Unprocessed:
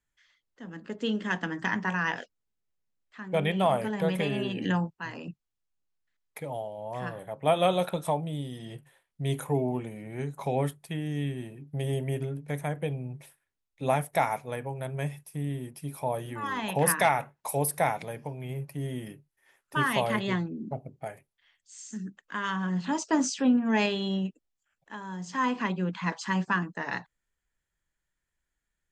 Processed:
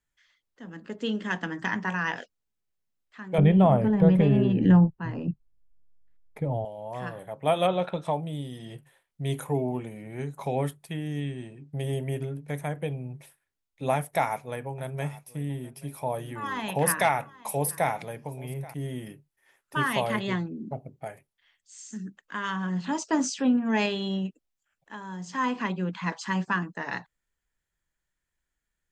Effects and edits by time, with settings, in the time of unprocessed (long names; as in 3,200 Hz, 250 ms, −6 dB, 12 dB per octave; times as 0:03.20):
0:03.38–0:06.65: spectral tilt −4.5 dB per octave
0:07.66–0:08.12: low-pass filter 2,400 Hz → 5,400 Hz
0:11.20–0:11.73: elliptic low-pass filter 8,800 Hz
0:13.95–0:18.74: single-tap delay 830 ms −20 dB